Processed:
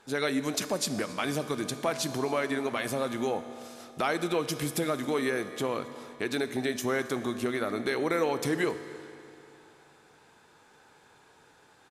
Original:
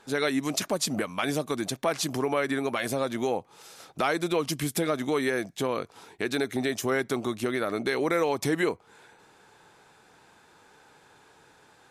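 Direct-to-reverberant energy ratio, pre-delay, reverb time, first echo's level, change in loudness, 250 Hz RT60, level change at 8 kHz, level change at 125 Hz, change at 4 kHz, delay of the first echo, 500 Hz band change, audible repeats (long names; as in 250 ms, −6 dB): 10.0 dB, 20 ms, 3.0 s, −22.5 dB, −2.0 dB, 3.0 s, −2.0 dB, −2.0 dB, −2.0 dB, 270 ms, −2.0 dB, 1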